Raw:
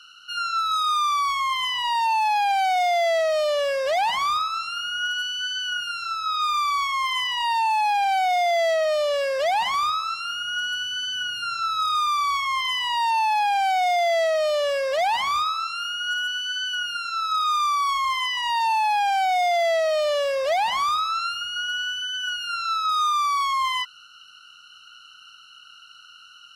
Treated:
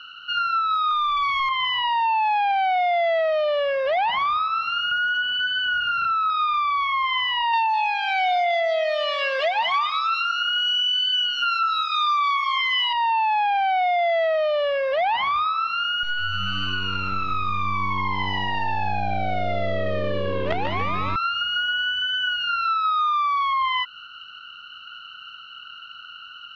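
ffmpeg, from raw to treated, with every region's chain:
-filter_complex "[0:a]asettb=1/sr,asplit=3[a][b][c];[a]atrim=end=0.914[d];[b]atrim=start=0.91:end=1.49,asetpts=PTS-STARTPTS,afade=t=in:d=0.004:c=qsin,afade=t=out:st=0.576:d=0.004:c=qsin,highpass=200,tiltshelf=f=1.1k:g=-4.5,acrusher=bits=3:mix=0:aa=0.5[e];[c]atrim=start=1.486[f];[d][e]acrossfade=d=0.004:c1=hsin:c2=qsin[g];[g][f]acrossfade=d=0.004:c1=qsin:c2=hsin,asettb=1/sr,asplit=3[h][i][j];[h]atrim=end=4.914[k];[i]atrim=start=4.91:end=6.3,asetpts=PTS-STARTPTS,afade=t=in:d=0.004:c=qsin,afade=t=out:st=1.386:d=0.004:c=qsin,tiltshelf=f=1.2k:g=6.5,asplit=2[l][m];[m]highpass=f=720:p=1,volume=23dB,asoftclip=type=tanh:threshold=-19dB[n];[l][n]amix=inputs=2:normalize=0,lowpass=f=2.4k:p=1,volume=-6dB,highpass=120,lowpass=6.4k[o];[j]atrim=start=6.296[p];[k][o]acrossfade=d=0.004:c1=hsin:c2=qsin[q];[q][p]acrossfade=d=0.004:c1=qsin:c2=hsin,asettb=1/sr,asplit=3[r][s][t];[r]atrim=end=7.534[u];[s]atrim=start=7.53:end=12.93,asetpts=PTS-STARTPTS,afade=t=in:d=0.004:c=qsin,afade=t=out:st=5.396:d=0.004:c=qsin,aemphasis=mode=production:type=riaa,aecho=1:1:4.4:0.72,atrim=end_sample=238140,aecho=1:1:202:0.251,atrim=end_sample=238140[v];[t]atrim=start=12.926[w];[u][v]acrossfade=d=0.004:c1=hsin:c2=qsin[x];[x][w]acrossfade=d=0.004:c1=qsin:c2=hsin,asettb=1/sr,asplit=3[y][z][aa];[y]atrim=end=16.034[ab];[z]atrim=start=16.03:end=21.16,asetpts=PTS-STARTPTS,afade=t=in:d=0.004:c=qsin,afade=t=out:st=5.126:d=0.004:c=qsin,lowpass=8.3k,acrusher=bits=4:dc=4:mix=0:aa=0.000001,asplit=9[ac][ad][ae][af][ag][ah][ai][aj][ak];[ad]adelay=144,afreqshift=-96,volume=-6dB[al];[ae]adelay=288,afreqshift=-192,volume=-10.4dB[am];[af]adelay=432,afreqshift=-288,volume=-14.9dB[an];[ag]adelay=576,afreqshift=-384,volume=-19.3dB[ao];[ah]adelay=720,afreqshift=-480,volume=-23.7dB[ap];[ai]adelay=864,afreqshift=-576,volume=-28.2dB[aq];[aj]adelay=1008,afreqshift=-672,volume=-32.6dB[ar];[ak]adelay=1152,afreqshift=-768,volume=-37.1dB[as];[ac][al][am][an][ao][ap][aq][ar][as]amix=inputs=9:normalize=0,atrim=end_sample=226233[at];[aa]atrim=start=21.156[au];[ab][at]acrossfade=d=0.004:c1=hsin:c2=qsin[av];[av][au]acrossfade=d=0.004:c1=qsin:c2=hsin,lowpass=f=3.2k:w=0.5412,lowpass=f=3.2k:w=1.3066,acompressor=threshold=-30dB:ratio=4,volume=8.5dB"

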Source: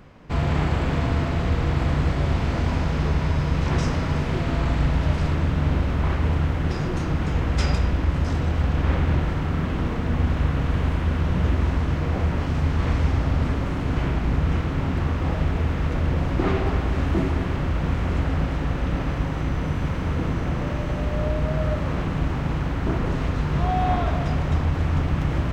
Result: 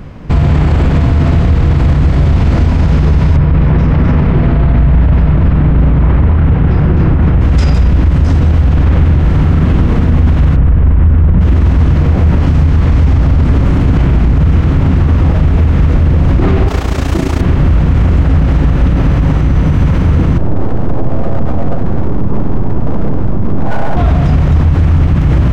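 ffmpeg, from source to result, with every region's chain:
-filter_complex "[0:a]asettb=1/sr,asplit=3[a][b][c];[a]atrim=end=3.364[d];[b]atrim=start=3.36:end=7.41,asetpts=PTS-STARTPTS,afade=t=in:d=0.004:c=qsin,afade=t=out:st=4.046:d=0.004:c=qsin,lowpass=2.4k,aecho=1:1:255:0.596,atrim=end_sample=178605[e];[c]atrim=start=7.406[f];[d][e]acrossfade=d=0.004:c1=hsin:c2=qsin[g];[g][f]acrossfade=d=0.004:c1=qsin:c2=hsin,asettb=1/sr,asplit=3[h][i][j];[h]atrim=end=10.564[k];[i]atrim=start=10.56:end=11.41,asetpts=PTS-STARTPTS,afade=t=in:d=0.004:c=qsin,afade=t=out:st=0.846:d=0.004:c=qsin,lowpass=2.1k,lowshelf=f=81:g=9[l];[j]atrim=start=11.406[m];[k][l]acrossfade=d=0.004:c1=hsin:c2=qsin[n];[n][m]acrossfade=d=0.004:c1=qsin:c2=hsin,asettb=1/sr,asplit=3[o][p][q];[o]atrim=end=16.684[r];[p]atrim=start=16.68:end=17.41,asetpts=PTS-STARTPTS,afade=t=in:d=0.004:c=qsin,afade=t=out:st=0.726:d=0.004:c=qsin,bass=f=250:g=-9,treble=f=4k:g=13,tremolo=f=29:d=0.71[s];[q]atrim=start=17.406[t];[r][s]acrossfade=d=0.004:c1=hsin:c2=qsin[u];[u][t]acrossfade=d=0.004:c1=qsin:c2=hsin,asettb=1/sr,asplit=3[v][w][x];[v]atrim=end=20.384[y];[w]atrim=start=20.38:end=23.97,asetpts=PTS-STARTPTS,afade=t=in:d=0.004:c=qsin,afade=t=out:st=3.586:d=0.004:c=qsin,lowpass=f=1k:w=0.5412,lowpass=f=1k:w=1.3066,aeval=exprs='abs(val(0))':c=same[z];[x]atrim=start=23.966[aa];[y][z]acrossfade=d=0.004:c1=hsin:c2=qsin[ab];[ab][aa]acrossfade=d=0.004:c1=qsin:c2=hsin,lowshelf=f=280:g=10.5,alimiter=level_in=12.5dB:limit=-1dB:release=50:level=0:latency=1,volume=-1dB"

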